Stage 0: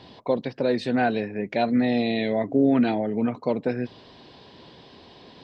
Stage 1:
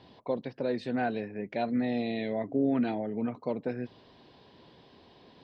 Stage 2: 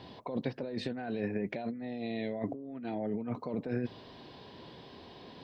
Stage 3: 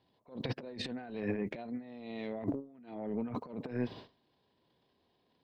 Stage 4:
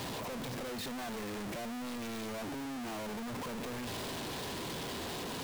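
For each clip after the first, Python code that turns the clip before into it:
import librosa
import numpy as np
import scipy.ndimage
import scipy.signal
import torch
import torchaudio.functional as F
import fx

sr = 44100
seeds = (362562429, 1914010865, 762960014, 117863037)

y1 = fx.high_shelf(x, sr, hz=3700.0, db=-6.0)
y1 = y1 * 10.0 ** (-7.5 / 20.0)
y2 = fx.hpss(y1, sr, part='percussive', gain_db=-4)
y2 = fx.over_compress(y2, sr, threshold_db=-38.0, ratio=-1.0)
y2 = y2 * 10.0 ** (1.5 / 20.0)
y3 = fx.transient(y2, sr, attack_db=-9, sustain_db=11)
y3 = fx.upward_expand(y3, sr, threshold_db=-49.0, expansion=2.5)
y3 = y3 * 10.0 ** (2.5 / 20.0)
y4 = np.sign(y3) * np.sqrt(np.mean(np.square(y3)))
y4 = y4 * 10.0 ** (1.0 / 20.0)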